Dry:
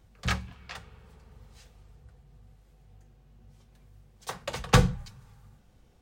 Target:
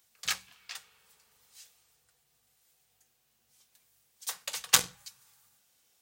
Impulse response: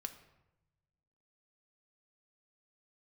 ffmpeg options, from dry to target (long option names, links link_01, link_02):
-af "aeval=exprs='0.473*(cos(1*acos(clip(val(0)/0.473,-1,1)))-cos(1*PI/2))+0.237*(cos(2*acos(clip(val(0)/0.473,-1,1)))-cos(2*PI/2))':channel_layout=same,aderivative,volume=8dB"